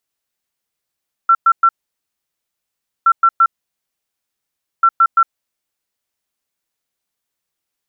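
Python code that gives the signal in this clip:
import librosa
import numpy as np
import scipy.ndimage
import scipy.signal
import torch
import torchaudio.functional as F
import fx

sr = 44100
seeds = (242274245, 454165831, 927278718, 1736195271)

y = fx.beep_pattern(sr, wave='sine', hz=1350.0, on_s=0.06, off_s=0.11, beeps=3, pause_s=1.37, groups=3, level_db=-6.5)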